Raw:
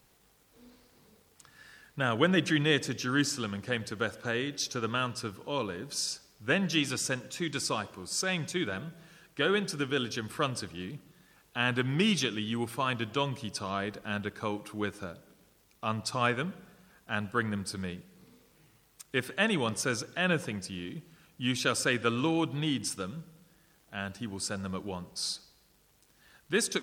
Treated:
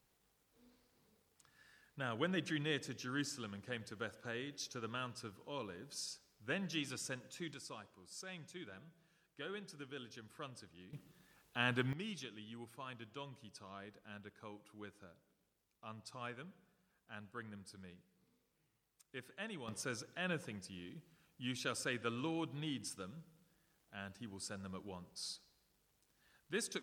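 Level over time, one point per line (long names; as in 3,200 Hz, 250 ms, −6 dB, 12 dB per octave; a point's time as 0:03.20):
−12.5 dB
from 0:07.54 −19 dB
from 0:10.93 −7 dB
from 0:11.93 −19 dB
from 0:19.68 −12 dB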